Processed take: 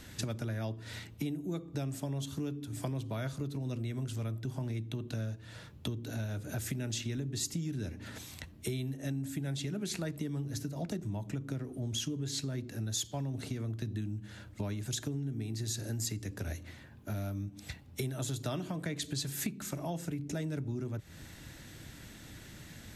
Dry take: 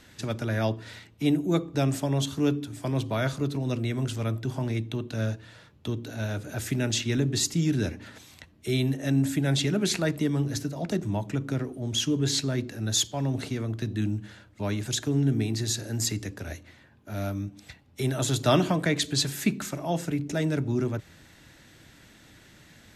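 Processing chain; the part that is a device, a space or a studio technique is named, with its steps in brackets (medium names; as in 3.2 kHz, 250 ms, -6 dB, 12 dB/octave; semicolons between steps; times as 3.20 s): ASMR close-microphone chain (bass shelf 230 Hz +7.5 dB; compression 8:1, threshold -34 dBFS, peak gain reduction 19.5 dB; treble shelf 7.3 kHz +8 dB)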